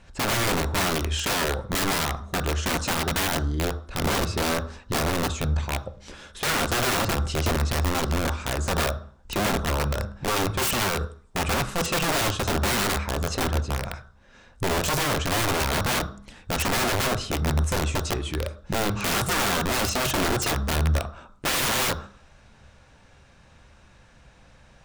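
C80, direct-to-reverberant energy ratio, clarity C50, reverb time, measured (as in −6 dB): 18.0 dB, 9.0 dB, 15.0 dB, 0.45 s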